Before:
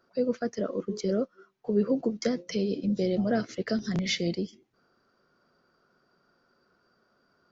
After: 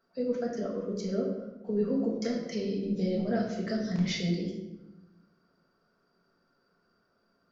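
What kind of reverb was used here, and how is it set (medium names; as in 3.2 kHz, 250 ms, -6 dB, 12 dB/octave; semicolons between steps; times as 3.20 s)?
simulated room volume 470 m³, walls mixed, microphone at 1.6 m; trim -7.5 dB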